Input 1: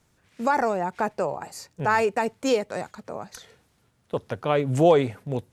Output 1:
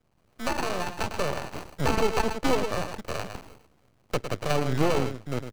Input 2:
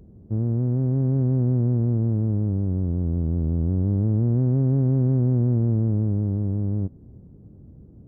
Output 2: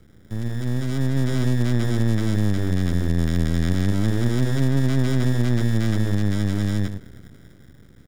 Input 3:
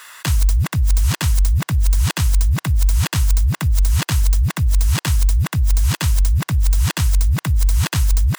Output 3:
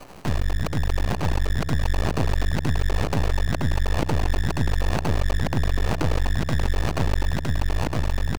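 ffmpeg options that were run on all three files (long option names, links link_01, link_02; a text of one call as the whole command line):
ffmpeg -i in.wav -filter_complex "[0:a]asplit=2[link_01][link_02];[link_02]adelay=105,volume=-9dB,highshelf=frequency=4000:gain=-2.36[link_03];[link_01][link_03]amix=inputs=2:normalize=0,dynaudnorm=framelen=120:gausssize=21:maxgain=11.5dB,acrusher=samples=25:mix=1:aa=0.000001,acrossover=split=210|710|7500[link_04][link_05][link_06][link_07];[link_04]acompressor=threshold=-18dB:ratio=4[link_08];[link_05]acompressor=threshold=-19dB:ratio=4[link_09];[link_06]acompressor=threshold=-27dB:ratio=4[link_10];[link_07]acompressor=threshold=-47dB:ratio=4[link_11];[link_08][link_09][link_10][link_11]amix=inputs=4:normalize=0,aeval=exprs='max(val(0),0)':channel_layout=same" out.wav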